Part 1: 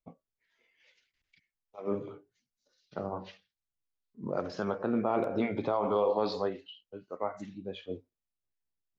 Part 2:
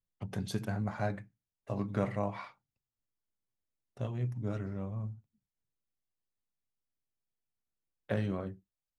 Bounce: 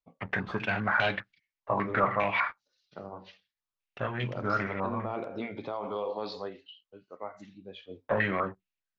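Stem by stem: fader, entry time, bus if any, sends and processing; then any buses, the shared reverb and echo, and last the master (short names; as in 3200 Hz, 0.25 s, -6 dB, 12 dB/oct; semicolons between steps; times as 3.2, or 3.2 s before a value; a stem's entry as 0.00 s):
-7.0 dB, 0.00 s, no send, high shelf 2300 Hz +10.5 dB
-0.5 dB, 0.00 s, no send, tilt +4 dB/oct; sample leveller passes 3; stepped low-pass 5 Hz 1000–3100 Hz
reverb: off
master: LPF 4400 Hz 12 dB/oct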